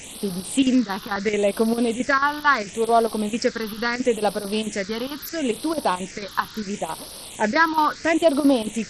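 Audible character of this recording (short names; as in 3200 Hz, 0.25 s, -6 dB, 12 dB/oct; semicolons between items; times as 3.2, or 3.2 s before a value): chopped level 4.5 Hz, depth 65%, duty 80%; a quantiser's noise floor 6-bit, dither triangular; phasing stages 6, 0.74 Hz, lowest notch 590–2200 Hz; SBC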